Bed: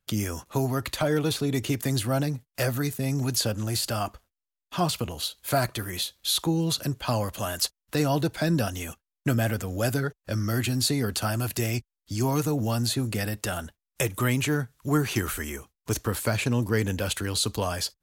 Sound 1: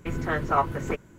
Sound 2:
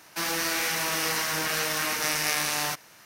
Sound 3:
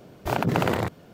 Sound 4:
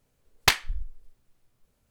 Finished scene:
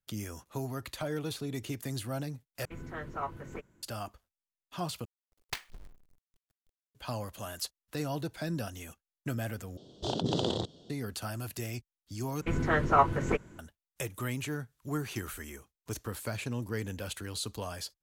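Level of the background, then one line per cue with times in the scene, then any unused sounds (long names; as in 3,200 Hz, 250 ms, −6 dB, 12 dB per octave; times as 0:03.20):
bed −10.5 dB
0:02.65: overwrite with 1 −13.5 dB
0:05.05: overwrite with 4 −18 dB + log-companded quantiser 4 bits
0:09.77: overwrite with 3 −8 dB + drawn EQ curve 170 Hz 0 dB, 370 Hz +4 dB, 840 Hz −3 dB, 2,300 Hz −19 dB, 3,300 Hz +15 dB, 7,900 Hz +3 dB, 14,000 Hz −26 dB
0:12.41: overwrite with 1 + low-pass filter 10,000 Hz
not used: 2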